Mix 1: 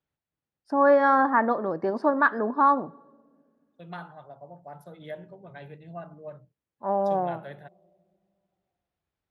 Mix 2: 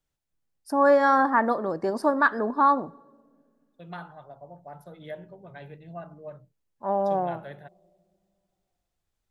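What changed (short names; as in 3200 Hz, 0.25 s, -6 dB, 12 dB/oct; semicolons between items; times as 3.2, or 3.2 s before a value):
first voice: remove LPF 3000 Hz 12 dB/oct; master: remove HPF 78 Hz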